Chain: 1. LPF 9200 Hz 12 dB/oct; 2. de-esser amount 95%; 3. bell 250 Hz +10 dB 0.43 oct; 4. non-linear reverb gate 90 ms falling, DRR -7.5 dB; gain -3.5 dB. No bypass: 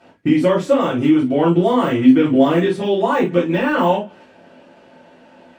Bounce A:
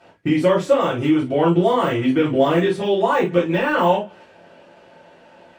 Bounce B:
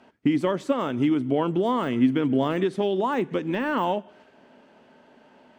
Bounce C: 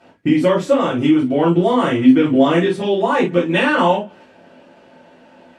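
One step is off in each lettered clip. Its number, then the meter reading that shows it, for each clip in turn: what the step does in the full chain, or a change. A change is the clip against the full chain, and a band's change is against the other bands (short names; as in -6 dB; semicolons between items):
3, 250 Hz band -5.0 dB; 4, loudness change -8.5 LU; 2, 2 kHz band +3.0 dB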